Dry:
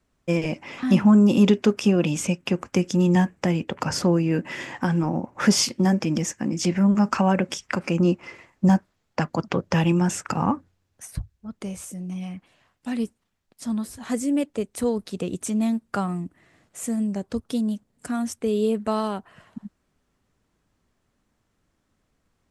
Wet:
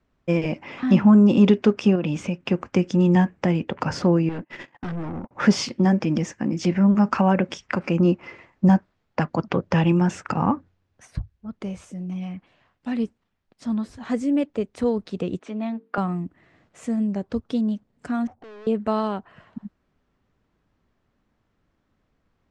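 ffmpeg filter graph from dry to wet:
-filter_complex "[0:a]asettb=1/sr,asplit=3[s0][s1][s2];[s0]atrim=end=1.954[s3];[s1]atrim=start=1.95:end=2.4,asetpts=PTS-STARTPTS,afade=t=in:d=0.004:c=qsin,afade=t=out:st=0.446:d=0.004:c=qsin,highshelf=f=5900:g=-6,acompressor=threshold=0.0891:ratio=5:attack=3.2:release=140:knee=1:detection=peak[s4];[s2]atrim=start=2.396[s5];[s3][s4]acrossfade=d=0.004:c1=hsin:c2=qsin[s6];[s6][s5]acrossfade=d=0.004:c1=qsin:c2=hsin,asettb=1/sr,asplit=3[s7][s8][s9];[s7]atrim=end=4.294[s10];[s8]atrim=start=4.29:end=5.31,asetpts=PTS-STARTPTS,afade=t=in:d=0.004:c=qsin,afade=t=out:st=1.016:d=0.004:c=qsin,agate=range=0.0178:threshold=0.02:ratio=16:release=100:detection=peak,aeval=exprs='(tanh(28.2*val(0)+0.3)-tanh(0.3))/28.2':c=same[s11];[s9]atrim=start=5.306[s12];[s10][s11]acrossfade=d=0.004:c1=hsin:c2=qsin[s13];[s13][s12]acrossfade=d=0.004:c1=qsin:c2=hsin,asettb=1/sr,asplit=3[s14][s15][s16];[s14]atrim=end=15.394[s17];[s15]atrim=start=15.39:end=15.98,asetpts=PTS-STARTPTS,afade=t=in:d=0.004:c=qsin,afade=t=out:st=0.586:d=0.004:c=qsin,highpass=320,lowpass=3300,bandreject=f=50:t=h:w=6,bandreject=f=100:t=h:w=6,bandreject=f=150:t=h:w=6,bandreject=f=200:t=h:w=6,bandreject=f=250:t=h:w=6,bandreject=f=300:t=h:w=6,bandreject=f=350:t=h:w=6,bandreject=f=400:t=h:w=6,bandreject=f=450:t=h:w=6[s18];[s16]atrim=start=15.976[s19];[s17][s18]acrossfade=d=0.004:c1=hsin:c2=qsin[s20];[s20][s19]acrossfade=d=0.004:c1=qsin:c2=hsin,asettb=1/sr,asplit=3[s21][s22][s23];[s21]atrim=end=18.274[s24];[s22]atrim=start=18.27:end=18.67,asetpts=PTS-STARTPTS,afade=t=in:d=0.004:c=qsin,afade=t=out:st=0.396:d=0.004:c=qsin,acompressor=threshold=0.0447:ratio=2:attack=3.2:release=140:knee=1:detection=peak,lowpass=f=760:t=q:w=8,aeval=exprs='(tanh(141*val(0)+0.2)-tanh(0.2))/141':c=same[s25];[s23]atrim=start=18.666[s26];[s24][s25]acrossfade=d=0.004:c1=hsin:c2=qsin[s27];[s27][s26]acrossfade=d=0.004:c1=qsin:c2=hsin,lowpass=6000,aemphasis=mode=reproduction:type=50kf,volume=1.19"

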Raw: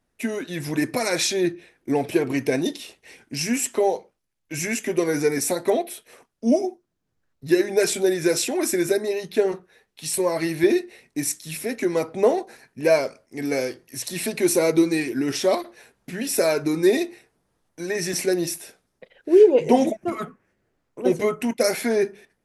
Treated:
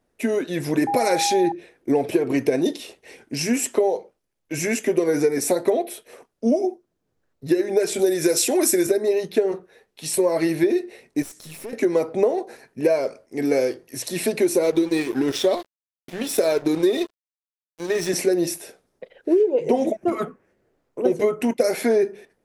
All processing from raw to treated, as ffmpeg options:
-filter_complex "[0:a]asettb=1/sr,asplit=3[s0][s1][s2];[s0]atrim=end=0.874[s3];[s1]atrim=start=0.87:end=1.52,asetpts=PTS-STARTPTS,afade=t=in:d=0.004:c=qsin,afade=t=out:st=0.646:d=0.004:c=qsin,aeval=exprs='val(0)+0.0631*sin(2*PI*810*n/s)':c=same,equalizer=f=11000:w=3.8:g=3.5,asoftclip=type=hard:threshold=0.282[s4];[s2]atrim=start=1.516[s5];[s3][s4]acrossfade=d=0.004:c1=hsin:c2=qsin[s6];[s6][s5]acrossfade=d=0.004:c1=qsin:c2=hsin,asettb=1/sr,asplit=3[s7][s8][s9];[s7]atrim=end=7.994[s10];[s8]atrim=start=7.99:end=8.87,asetpts=PTS-STARTPTS,afade=t=in:d=0.004:c=qsin,afade=t=out:st=0.876:d=0.004:c=qsin,highpass=90,highshelf=f=4600:g=11.5[s11];[s9]atrim=start=8.866[s12];[s10][s11]acrossfade=d=0.004:c1=hsin:c2=qsin[s13];[s13][s12]acrossfade=d=0.004:c1=qsin:c2=hsin,asettb=1/sr,asplit=3[s14][s15][s16];[s14]atrim=end=11.224[s17];[s15]atrim=start=11.22:end=11.73,asetpts=PTS-STARTPTS,afade=t=in:d=0.004:c=qsin,afade=t=out:st=0.506:d=0.004:c=qsin,acompressor=threshold=0.0224:ratio=16:attack=3.2:release=140:knee=1:detection=peak,aeval=exprs='clip(val(0),-1,0.00708)':c=same[s18];[s16]atrim=start=11.726[s19];[s17][s18]acrossfade=d=0.004:c1=hsin:c2=qsin[s20];[s20][s19]acrossfade=d=0.004:c1=qsin:c2=hsin,asettb=1/sr,asplit=3[s21][s22][s23];[s21]atrim=end=14.634[s24];[s22]atrim=start=14.63:end=18.09,asetpts=PTS-STARTPTS,afade=t=in:d=0.004:c=qsin,afade=t=out:st=3.456:d=0.004:c=qsin,equalizer=f=3500:t=o:w=0.26:g=11.5,aeval=exprs='sgn(val(0))*max(abs(val(0))-0.0188,0)':c=same[s25];[s23]atrim=start=18.086[s26];[s24][s25]acrossfade=d=0.004:c1=hsin:c2=qsin[s27];[s27][s26]acrossfade=d=0.004:c1=qsin:c2=hsin,equalizer=f=470:t=o:w=1.6:g=8,acompressor=threshold=0.178:ratio=12"

